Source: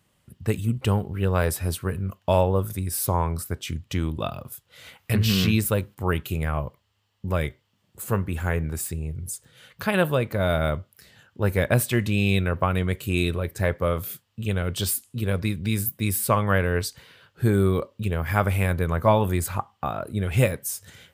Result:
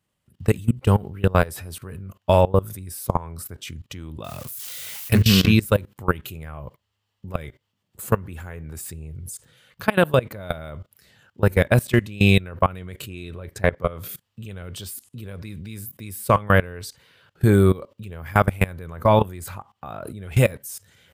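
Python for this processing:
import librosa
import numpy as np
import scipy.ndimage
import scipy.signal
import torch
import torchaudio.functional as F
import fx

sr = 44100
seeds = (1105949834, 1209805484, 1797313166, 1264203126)

y = fx.crossing_spikes(x, sr, level_db=-28.5, at=(4.24, 5.22))
y = fx.high_shelf(y, sr, hz=8800.0, db=-10.5, at=(13.02, 14.09))
y = fx.level_steps(y, sr, step_db=21)
y = y * librosa.db_to_amplitude(7.0)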